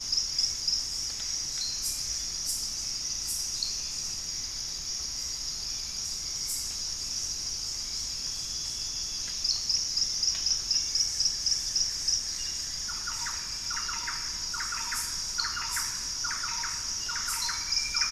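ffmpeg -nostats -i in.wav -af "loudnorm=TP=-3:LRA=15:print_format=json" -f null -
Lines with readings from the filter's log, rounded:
"input_i" : "-28.8",
"input_tp" : "-12.2",
"input_lra" : "4.6",
"input_thresh" : "-38.8",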